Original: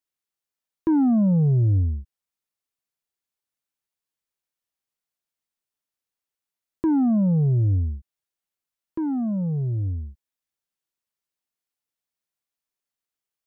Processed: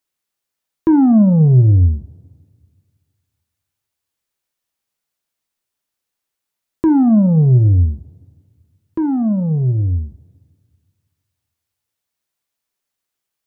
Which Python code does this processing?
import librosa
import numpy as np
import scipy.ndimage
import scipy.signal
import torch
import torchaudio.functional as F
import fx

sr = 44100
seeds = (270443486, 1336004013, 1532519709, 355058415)

y = fx.rev_double_slope(x, sr, seeds[0], early_s=0.4, late_s=2.0, knee_db=-18, drr_db=11.5)
y = y * 10.0 ** (8.0 / 20.0)